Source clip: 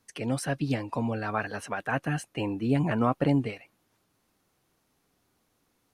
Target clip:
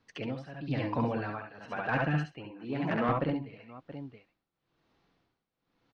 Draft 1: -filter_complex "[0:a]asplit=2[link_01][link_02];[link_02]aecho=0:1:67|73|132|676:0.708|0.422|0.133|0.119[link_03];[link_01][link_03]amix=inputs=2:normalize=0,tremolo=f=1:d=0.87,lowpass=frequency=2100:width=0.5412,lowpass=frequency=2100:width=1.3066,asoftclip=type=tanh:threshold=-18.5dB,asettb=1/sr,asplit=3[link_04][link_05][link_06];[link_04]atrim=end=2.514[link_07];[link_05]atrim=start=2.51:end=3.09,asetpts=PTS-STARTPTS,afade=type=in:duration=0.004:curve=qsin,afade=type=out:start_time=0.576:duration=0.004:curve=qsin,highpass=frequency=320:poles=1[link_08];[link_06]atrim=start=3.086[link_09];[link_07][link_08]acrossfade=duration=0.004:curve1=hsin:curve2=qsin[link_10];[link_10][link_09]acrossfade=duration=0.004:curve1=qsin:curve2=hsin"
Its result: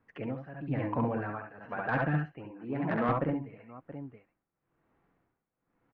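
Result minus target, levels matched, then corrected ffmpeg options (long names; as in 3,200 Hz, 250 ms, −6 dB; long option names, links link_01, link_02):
4,000 Hz band −9.5 dB
-filter_complex "[0:a]asplit=2[link_01][link_02];[link_02]aecho=0:1:67|73|132|676:0.708|0.422|0.133|0.119[link_03];[link_01][link_03]amix=inputs=2:normalize=0,tremolo=f=1:d=0.87,lowpass=frequency=4400:width=0.5412,lowpass=frequency=4400:width=1.3066,asoftclip=type=tanh:threshold=-18.5dB,asettb=1/sr,asplit=3[link_04][link_05][link_06];[link_04]atrim=end=2.514[link_07];[link_05]atrim=start=2.51:end=3.09,asetpts=PTS-STARTPTS,afade=type=in:duration=0.004:curve=qsin,afade=type=out:start_time=0.576:duration=0.004:curve=qsin,highpass=frequency=320:poles=1[link_08];[link_06]atrim=start=3.086[link_09];[link_07][link_08]acrossfade=duration=0.004:curve1=hsin:curve2=qsin[link_10];[link_10][link_09]acrossfade=duration=0.004:curve1=qsin:curve2=hsin"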